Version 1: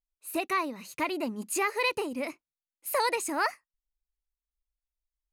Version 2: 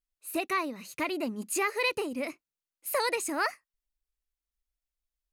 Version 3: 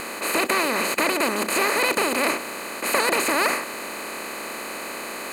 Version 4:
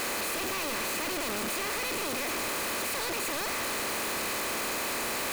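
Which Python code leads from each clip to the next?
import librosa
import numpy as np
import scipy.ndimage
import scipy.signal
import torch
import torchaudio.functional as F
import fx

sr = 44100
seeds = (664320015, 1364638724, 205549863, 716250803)

y1 = fx.peak_eq(x, sr, hz=920.0, db=-5.0, octaves=0.39)
y2 = fx.bin_compress(y1, sr, power=0.2)
y3 = np.sign(y2) * np.sqrt(np.mean(np.square(y2)))
y3 = y3 * 10.0 ** (-7.5 / 20.0)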